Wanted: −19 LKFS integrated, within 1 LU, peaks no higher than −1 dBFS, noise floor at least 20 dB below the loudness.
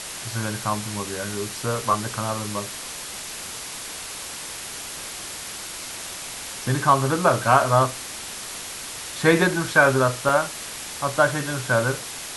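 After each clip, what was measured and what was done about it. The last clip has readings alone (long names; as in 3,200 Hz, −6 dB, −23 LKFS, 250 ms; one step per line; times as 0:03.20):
number of dropouts 1; longest dropout 3.0 ms; background noise floor −35 dBFS; target noise floor −44 dBFS; integrated loudness −24.0 LKFS; sample peak −2.5 dBFS; target loudness −19.0 LKFS
→ repair the gap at 0:10.29, 3 ms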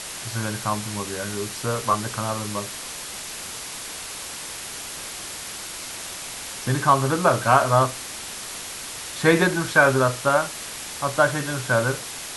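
number of dropouts 0; background noise floor −35 dBFS; target noise floor −44 dBFS
→ broadband denoise 9 dB, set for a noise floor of −35 dBFS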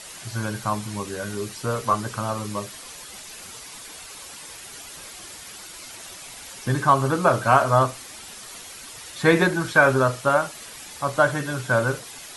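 background noise floor −41 dBFS; target noise floor −43 dBFS
→ broadband denoise 6 dB, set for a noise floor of −41 dBFS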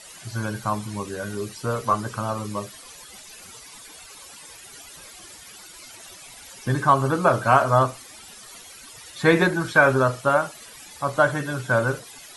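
background noise floor −44 dBFS; integrated loudness −22.5 LKFS; sample peak −3.0 dBFS; target loudness −19.0 LKFS
→ level +3.5 dB
brickwall limiter −1 dBFS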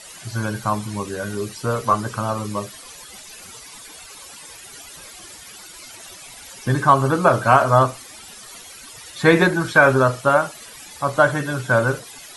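integrated loudness −19.0 LKFS; sample peak −1.0 dBFS; background noise floor −41 dBFS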